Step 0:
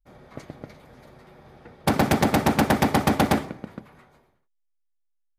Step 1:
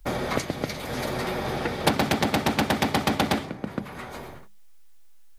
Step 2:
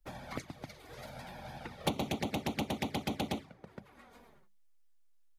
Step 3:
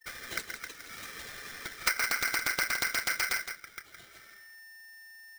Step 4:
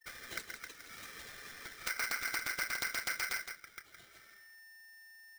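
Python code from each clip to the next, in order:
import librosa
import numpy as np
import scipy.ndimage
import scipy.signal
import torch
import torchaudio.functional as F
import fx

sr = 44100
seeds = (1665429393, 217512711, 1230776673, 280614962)

y1 = fx.hum_notches(x, sr, base_hz=50, count=4)
y1 = fx.dynamic_eq(y1, sr, hz=3600.0, q=0.93, threshold_db=-43.0, ratio=4.0, max_db=7)
y1 = fx.band_squash(y1, sr, depth_pct=100)
y1 = y1 * librosa.db_to_amplitude(-3.0)
y2 = fx.env_flanger(y1, sr, rest_ms=8.0, full_db=-20.0)
y2 = fx.upward_expand(y2, sr, threshold_db=-37.0, expansion=1.5)
y2 = y2 * librosa.db_to_amplitude(-8.0)
y3 = fx.fixed_phaser(y2, sr, hz=340.0, stages=4)
y3 = y3 + 10.0 ** (-8.5 / 20.0) * np.pad(y3, (int(165 * sr / 1000.0), 0))[:len(y3)]
y3 = y3 * np.sign(np.sin(2.0 * np.pi * 1800.0 * np.arange(len(y3)) / sr))
y3 = y3 * librosa.db_to_amplitude(7.5)
y4 = fx.transformer_sat(y3, sr, knee_hz=1500.0)
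y4 = y4 * librosa.db_to_amplitude(-5.5)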